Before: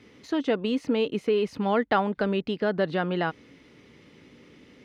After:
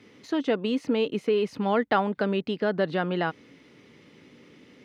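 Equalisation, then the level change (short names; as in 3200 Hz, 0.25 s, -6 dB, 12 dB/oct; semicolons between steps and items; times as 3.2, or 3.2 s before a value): HPF 100 Hz; 0.0 dB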